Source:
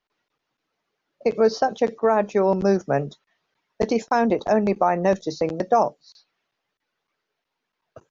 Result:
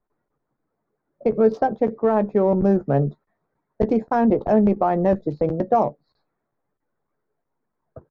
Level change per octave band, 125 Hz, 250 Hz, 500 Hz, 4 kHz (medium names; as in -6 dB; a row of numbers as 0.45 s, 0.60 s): +6.0 dB, +4.5 dB, +0.5 dB, under -10 dB